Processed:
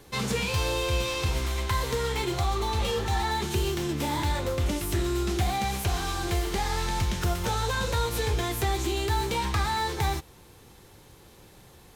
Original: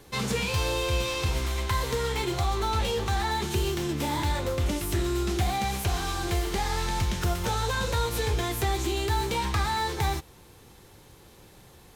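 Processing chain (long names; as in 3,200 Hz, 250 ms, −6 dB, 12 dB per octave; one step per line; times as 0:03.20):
healed spectral selection 0:02.57–0:03.21, 900–2,000 Hz both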